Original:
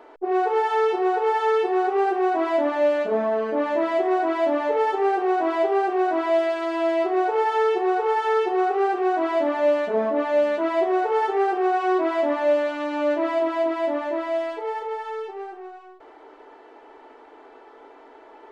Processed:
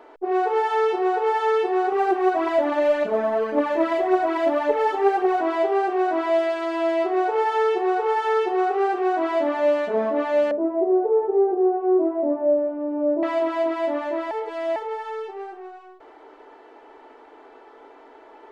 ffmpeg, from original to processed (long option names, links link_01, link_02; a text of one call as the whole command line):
ffmpeg -i in.wav -filter_complex "[0:a]asettb=1/sr,asplit=3[link_01][link_02][link_03];[link_01]atrim=end=1.924[link_04];[link_02]atrim=start=1.92:end=5.41,asetpts=PTS-STARTPTS,afade=type=in:duration=0.004:curve=qsin,afade=type=out:start_time=3.486:duration=0.004:curve=qsin,aphaser=in_gain=1:out_gain=1:delay=3.8:decay=0.44:speed=1.8:type=triangular[link_05];[link_03]atrim=start=5.406[link_06];[link_04][link_05]acrossfade=duration=0.004:curve1=hsin:curve2=qsin[link_07];[link_07][link_06]acrossfade=duration=0.004:curve1=qsin:curve2=hsin,asettb=1/sr,asplit=3[link_08][link_09][link_10];[link_08]atrim=end=10.514[link_11];[link_09]atrim=start=10.51:end=13.23,asetpts=PTS-STARTPTS,afade=type=in:duration=0.004:curve=qsin,afade=type=out:start_time=2.716:duration=0.004:curve=qsin,lowpass=frequency=470:width_type=q:width=1.6[link_12];[link_10]atrim=start=13.226[link_13];[link_11][link_12]acrossfade=duration=0.004:curve1=hsin:curve2=qsin[link_14];[link_14][link_13]acrossfade=duration=0.004:curve1=qsin:curve2=hsin,asplit=3[link_15][link_16][link_17];[link_15]atrim=end=14.312[link_18];[link_16]atrim=start=14.308:end=14.762,asetpts=PTS-STARTPTS,areverse[link_19];[link_17]atrim=start=14.758[link_20];[link_18][link_19]acrossfade=duration=0.004:curve1=hsin:curve2=hsin[link_21];[link_21][link_20]acrossfade=duration=0.004:curve1=hsin:curve2=hsin" out.wav